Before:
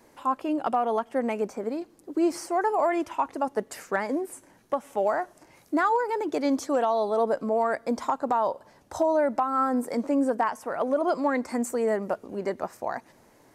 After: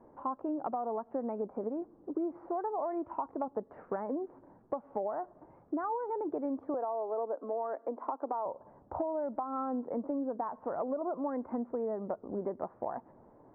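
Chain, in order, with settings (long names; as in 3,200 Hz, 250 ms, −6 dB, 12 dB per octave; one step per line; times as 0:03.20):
low-pass filter 1,100 Hz 24 dB per octave
downward compressor, threshold −32 dBFS, peak gain reduction 12 dB
0:06.74–0:08.46: Butterworth high-pass 270 Hz 36 dB per octave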